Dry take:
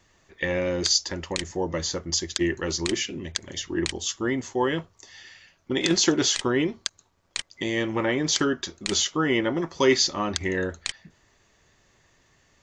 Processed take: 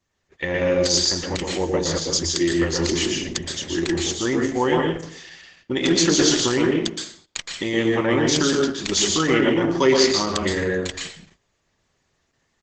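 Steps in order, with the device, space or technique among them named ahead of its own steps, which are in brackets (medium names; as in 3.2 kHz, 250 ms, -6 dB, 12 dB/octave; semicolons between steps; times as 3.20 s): speakerphone in a meeting room (reverberation RT60 0.55 s, pre-delay 113 ms, DRR 1 dB; speakerphone echo 270 ms, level -27 dB; level rider gain up to 4 dB; gate -50 dBFS, range -13 dB; Opus 12 kbps 48 kHz)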